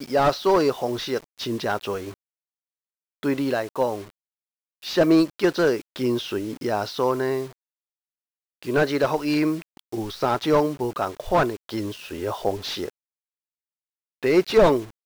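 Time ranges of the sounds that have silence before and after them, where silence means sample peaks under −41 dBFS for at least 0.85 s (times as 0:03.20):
0:03.23–0:07.53
0:08.63–0:12.90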